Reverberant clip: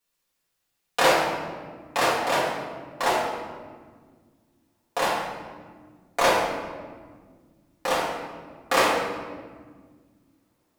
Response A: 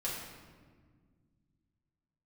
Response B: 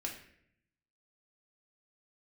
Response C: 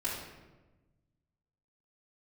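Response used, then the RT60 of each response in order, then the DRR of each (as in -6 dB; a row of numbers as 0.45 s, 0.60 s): A; 1.6 s, 0.70 s, 1.2 s; -7.0 dB, -1.0 dB, -9.0 dB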